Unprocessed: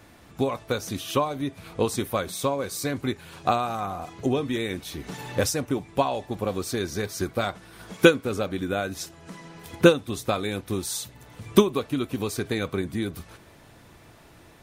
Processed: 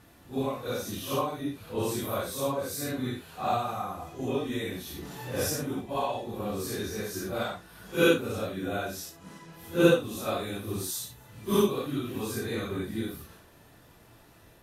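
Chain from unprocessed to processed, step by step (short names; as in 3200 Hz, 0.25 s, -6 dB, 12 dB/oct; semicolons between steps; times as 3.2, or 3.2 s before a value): phase scrambler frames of 0.2 s; bell 12000 Hz +10 dB 0.24 oct; notch 2200 Hz, Q 14; gain -4.5 dB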